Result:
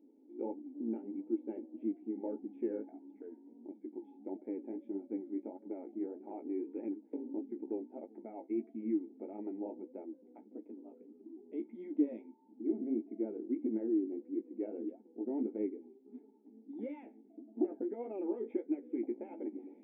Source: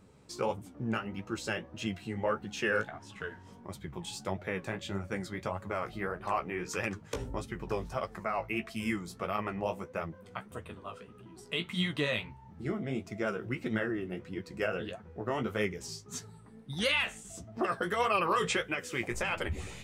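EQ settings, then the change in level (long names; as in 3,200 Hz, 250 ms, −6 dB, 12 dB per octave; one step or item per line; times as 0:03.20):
formant resonators in series u
linear-phase brick-wall high-pass 220 Hz
phaser with its sweep stopped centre 2,600 Hz, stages 4
+9.0 dB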